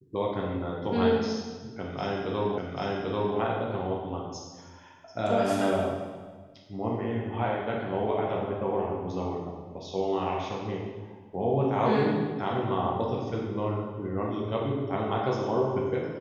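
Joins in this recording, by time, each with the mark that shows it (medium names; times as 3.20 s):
2.58 s: repeat of the last 0.79 s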